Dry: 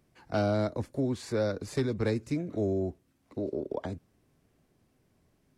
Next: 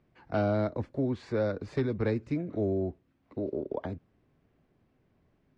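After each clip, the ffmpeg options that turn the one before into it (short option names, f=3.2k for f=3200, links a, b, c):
-af "lowpass=2.9k"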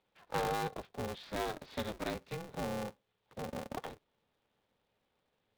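-af "highpass=450,equalizer=f=500:t=q:w=4:g=-6,equalizer=f=1.2k:t=q:w=4:g=-7,equalizer=f=1.9k:t=q:w=4:g=-5,equalizer=f=3.5k:t=q:w=4:g=10,lowpass=f=4.9k:w=0.5412,lowpass=f=4.9k:w=1.3066,aeval=exprs='val(0)*sgn(sin(2*PI*160*n/s))':c=same,volume=-1.5dB"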